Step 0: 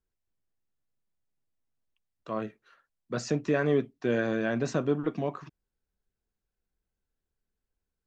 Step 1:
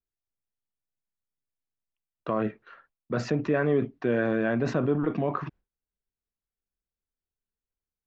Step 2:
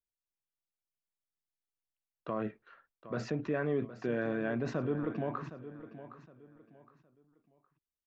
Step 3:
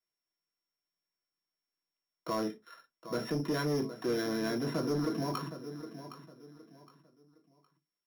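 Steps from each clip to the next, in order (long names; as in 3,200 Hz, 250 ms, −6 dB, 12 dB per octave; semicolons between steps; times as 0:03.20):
low-pass filter 2,400 Hz 12 dB per octave; noise gate with hold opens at −56 dBFS; in parallel at +1 dB: compressor whose output falls as the input rises −37 dBFS, ratio −1
repeating echo 764 ms, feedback 29%, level −13.5 dB; level −8 dB
samples sorted by size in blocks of 8 samples; convolution reverb RT60 0.15 s, pre-delay 3 ms, DRR 3.5 dB; soft clipping −22 dBFS, distortion −16 dB; level −2.5 dB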